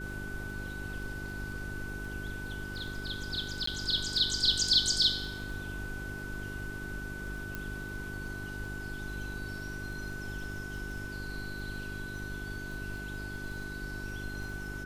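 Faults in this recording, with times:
crackle 12/s -41 dBFS
hum 50 Hz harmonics 8 -42 dBFS
tone 1500 Hz -41 dBFS
3.66–3.67 gap 14 ms
7.55 pop

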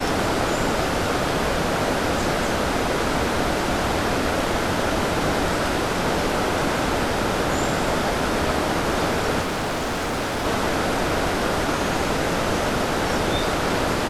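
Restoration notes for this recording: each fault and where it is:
9.41–10.46 clipped -22 dBFS

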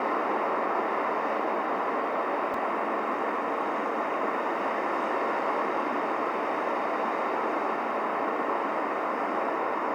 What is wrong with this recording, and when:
2.54 gap 2.9 ms

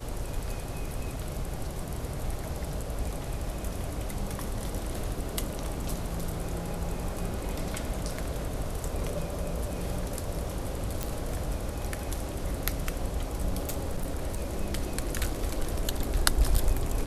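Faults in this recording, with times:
11.03 pop
13.65–14.57 clipped -25 dBFS

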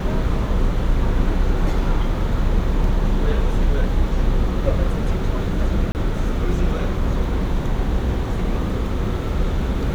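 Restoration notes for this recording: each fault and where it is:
5.92–5.95 gap 29 ms

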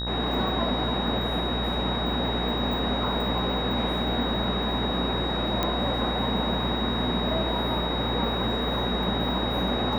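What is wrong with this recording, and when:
buzz 60 Hz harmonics 32 -32 dBFS
tone 3800 Hz -31 dBFS
5.63 pop -12 dBFS

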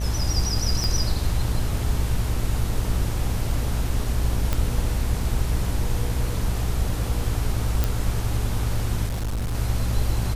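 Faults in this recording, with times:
buzz 60 Hz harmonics 36 -27 dBFS
0.84 pop
4.53 pop -9 dBFS
7.84 pop
9.07–9.55 clipped -23 dBFS

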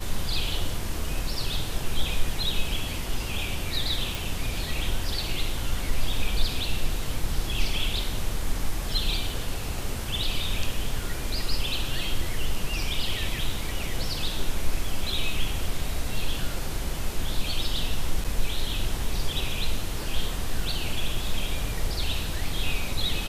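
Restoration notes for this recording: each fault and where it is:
4.15 pop
18.24–18.25 gap 6.5 ms

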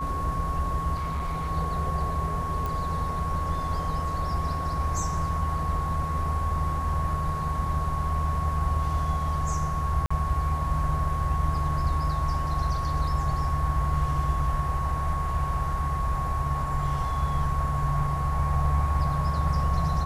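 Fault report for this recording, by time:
tone 1100 Hz -30 dBFS
0.95–1.51 clipped -25.5 dBFS
2.66 pop
10.06–10.11 gap 45 ms

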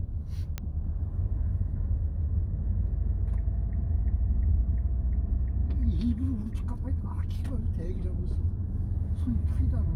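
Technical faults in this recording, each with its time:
0.58 pop -19 dBFS

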